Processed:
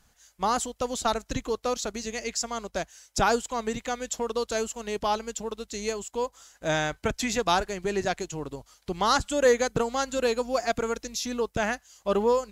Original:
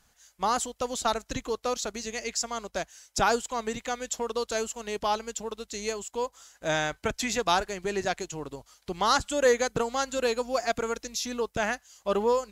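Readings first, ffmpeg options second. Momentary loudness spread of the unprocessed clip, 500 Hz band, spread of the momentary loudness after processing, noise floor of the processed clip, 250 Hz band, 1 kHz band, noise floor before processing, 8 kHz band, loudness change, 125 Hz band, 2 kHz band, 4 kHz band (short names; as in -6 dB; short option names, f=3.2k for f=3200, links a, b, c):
10 LU, +1.5 dB, 10 LU, -65 dBFS, +3.0 dB, +0.5 dB, -67 dBFS, 0.0 dB, +1.0 dB, +4.0 dB, 0.0 dB, 0.0 dB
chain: -af "lowshelf=f=370:g=4.5"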